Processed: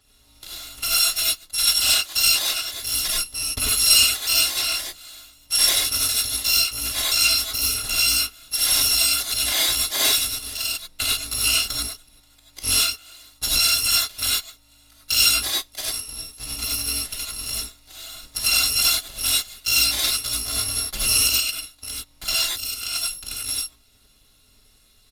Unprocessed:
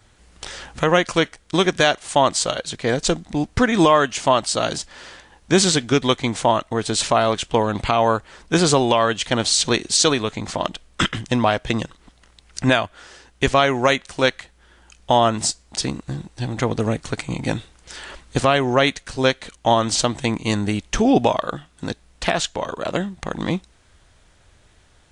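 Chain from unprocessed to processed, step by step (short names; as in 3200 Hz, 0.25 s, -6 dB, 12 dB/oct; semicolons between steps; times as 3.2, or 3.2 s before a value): FFT order left unsorted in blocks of 256 samples; bell 3900 Hz +9 dB 0.72 oct; non-linear reverb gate 0.12 s rising, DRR -5 dB; downsampling 32000 Hz; gain -8.5 dB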